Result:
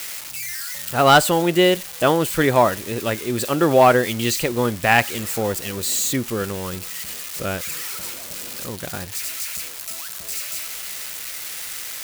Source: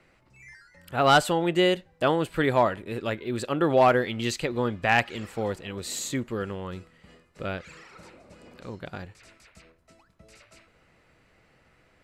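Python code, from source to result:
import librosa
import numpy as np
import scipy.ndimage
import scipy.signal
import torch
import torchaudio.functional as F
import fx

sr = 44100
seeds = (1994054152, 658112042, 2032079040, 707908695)

y = x + 0.5 * 10.0 ** (-25.5 / 20.0) * np.diff(np.sign(x), prepend=np.sign(x[:1]))
y = y * librosa.db_to_amplitude(6.0)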